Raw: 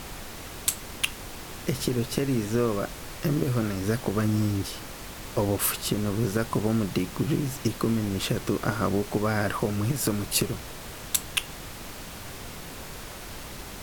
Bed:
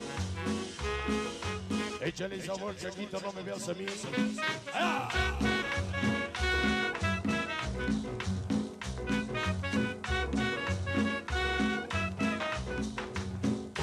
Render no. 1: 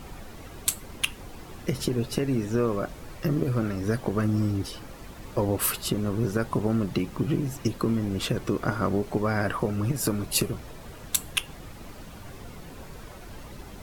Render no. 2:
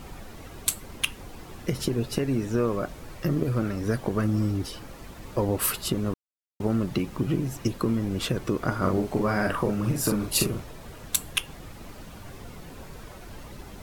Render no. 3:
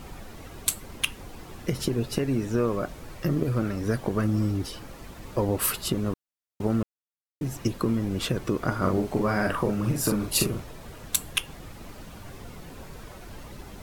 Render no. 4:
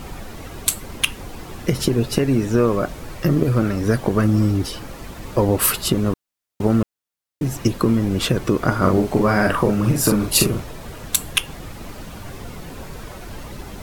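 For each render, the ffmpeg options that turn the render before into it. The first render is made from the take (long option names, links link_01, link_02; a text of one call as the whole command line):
ffmpeg -i in.wav -af "afftdn=noise_reduction=10:noise_floor=-40" out.wav
ffmpeg -i in.wav -filter_complex "[0:a]asettb=1/sr,asplit=3[link_01][link_02][link_03];[link_01]atrim=end=8.784[link_04];[link_02]atrim=start=8.78:end=10.64,asetpts=PTS-STARTPTS,afade=type=in:duration=0.004:curve=qsin,afade=type=out:start_time=1.856:duration=0.004:curve=qsin,asplit=2[link_05][link_06];[link_06]adelay=43,volume=-4dB[link_07];[link_05][link_07]amix=inputs=2:normalize=0,atrim=end_sample=82026[link_08];[link_03]atrim=start=10.636[link_09];[link_04][link_08]acrossfade=duration=0.004:curve1=hsin:curve2=qsin[link_10];[link_10][link_09]acrossfade=duration=0.004:curve1=qsin:curve2=hsin,asplit=3[link_11][link_12][link_13];[link_11]atrim=end=6.14,asetpts=PTS-STARTPTS,afade=type=out:start_time=6.136:duration=0.004:curve=hsin[link_14];[link_12]atrim=start=6.14:end=6.6,asetpts=PTS-STARTPTS,volume=0[link_15];[link_13]atrim=start=6.6,asetpts=PTS-STARTPTS,afade=type=in:duration=0.004:curve=hsin[link_16];[link_14][link_15][link_16]concat=n=3:v=0:a=1" out.wav
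ffmpeg -i in.wav -filter_complex "[0:a]asplit=3[link_01][link_02][link_03];[link_01]atrim=end=6.83,asetpts=PTS-STARTPTS,afade=type=out:start_time=6.826:duration=0.004:curve=hsin[link_04];[link_02]atrim=start=6.83:end=7.41,asetpts=PTS-STARTPTS,volume=0[link_05];[link_03]atrim=start=7.41,asetpts=PTS-STARTPTS,afade=type=in:duration=0.004:curve=hsin[link_06];[link_04][link_05][link_06]concat=n=3:v=0:a=1" out.wav
ffmpeg -i in.wav -af "volume=8dB,alimiter=limit=-2dB:level=0:latency=1" out.wav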